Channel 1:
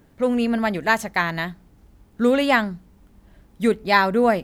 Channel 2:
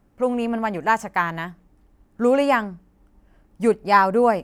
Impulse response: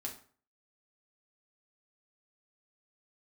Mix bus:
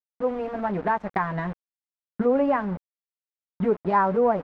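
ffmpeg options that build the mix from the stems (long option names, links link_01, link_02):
-filter_complex "[0:a]volume=19dB,asoftclip=hard,volume=-19dB,highpass=70,dynaudnorm=framelen=220:gausssize=3:maxgain=12dB,volume=-6dB[link_01];[1:a]acrusher=bits=5:mix=0:aa=0.000001,adelay=11,volume=-4.5dB,asplit=3[link_02][link_03][link_04];[link_03]volume=-18.5dB[link_05];[link_04]apad=whole_len=195537[link_06];[link_01][link_06]sidechaincompress=threshold=-38dB:ratio=8:attack=26:release=112[link_07];[2:a]atrim=start_sample=2205[link_08];[link_05][link_08]afir=irnorm=-1:irlink=0[link_09];[link_07][link_02][link_09]amix=inputs=3:normalize=0,aeval=exprs='val(0)*gte(abs(val(0)),0.0237)':channel_layout=same,lowpass=1300"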